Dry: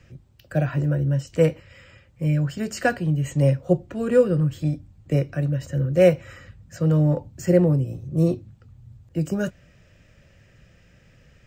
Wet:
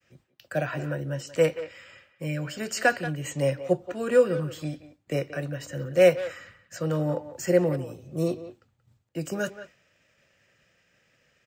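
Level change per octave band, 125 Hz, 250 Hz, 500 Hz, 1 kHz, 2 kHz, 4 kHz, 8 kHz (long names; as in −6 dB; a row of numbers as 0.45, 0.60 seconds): −11.0, −7.5, −2.0, +0.5, +2.0, +2.5, +2.5 decibels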